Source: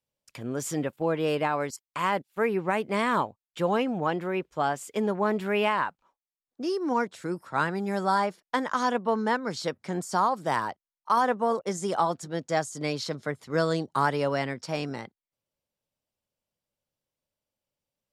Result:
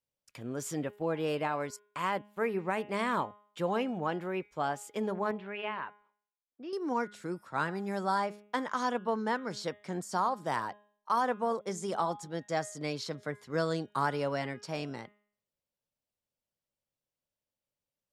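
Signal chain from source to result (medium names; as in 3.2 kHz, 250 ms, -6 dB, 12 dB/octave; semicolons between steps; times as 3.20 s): 5.31–6.73 s: four-pole ladder low-pass 3.7 kHz, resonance 30%; de-hum 206.9 Hz, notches 18; trim -5.5 dB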